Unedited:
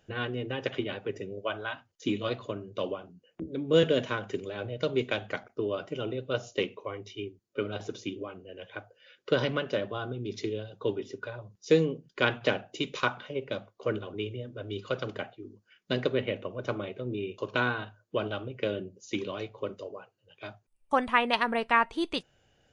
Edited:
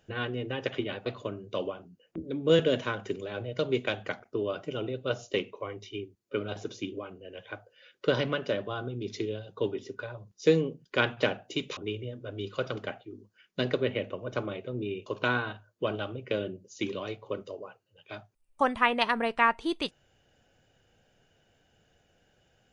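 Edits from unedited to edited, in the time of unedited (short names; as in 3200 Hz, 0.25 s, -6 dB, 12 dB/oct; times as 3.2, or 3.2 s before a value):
1.06–2.3 cut
13.01–14.09 cut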